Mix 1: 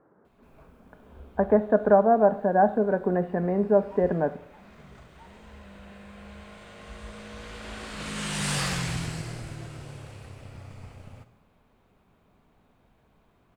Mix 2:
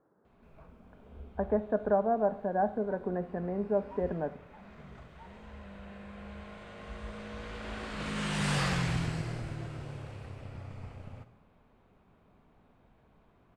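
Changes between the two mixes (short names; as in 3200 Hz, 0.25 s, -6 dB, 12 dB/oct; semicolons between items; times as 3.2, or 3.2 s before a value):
speech -8.5 dB; master: add LPF 2600 Hz 6 dB/oct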